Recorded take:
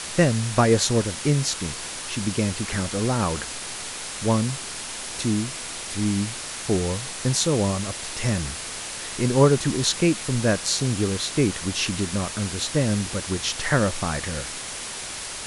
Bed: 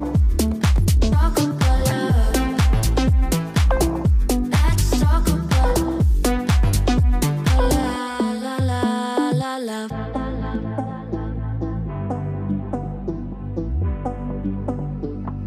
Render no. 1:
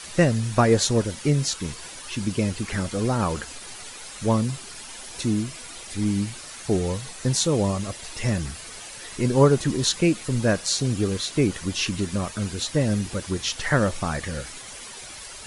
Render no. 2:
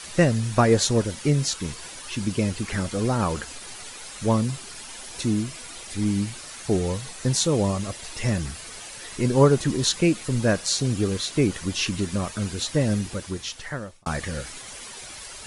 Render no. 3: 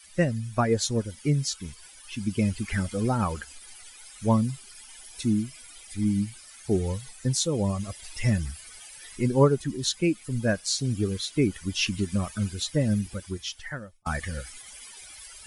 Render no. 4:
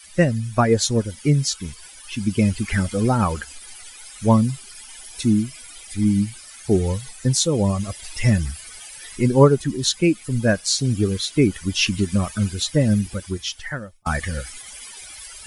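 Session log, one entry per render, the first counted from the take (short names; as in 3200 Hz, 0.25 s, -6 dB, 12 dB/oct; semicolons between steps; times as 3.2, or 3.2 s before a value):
denoiser 10 dB, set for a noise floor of -34 dBFS
12.92–14.06 fade out
per-bin expansion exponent 1.5; vocal rider within 4 dB 0.5 s
gain +6.5 dB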